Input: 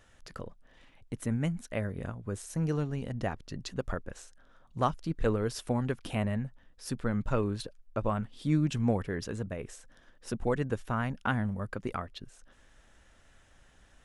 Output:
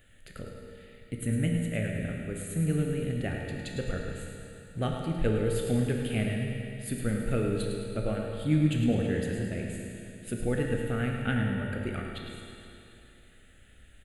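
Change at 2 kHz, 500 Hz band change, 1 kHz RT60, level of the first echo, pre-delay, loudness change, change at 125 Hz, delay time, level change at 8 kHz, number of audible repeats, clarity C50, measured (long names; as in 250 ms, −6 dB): +3.0 dB, +2.0 dB, 2.9 s, −8.5 dB, 17 ms, +2.5 dB, +3.5 dB, 106 ms, +3.5 dB, 2, 0.5 dB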